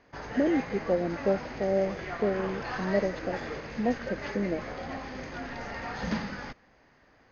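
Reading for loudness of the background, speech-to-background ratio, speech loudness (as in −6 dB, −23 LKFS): −37.0 LKFS, 6.5 dB, −30.5 LKFS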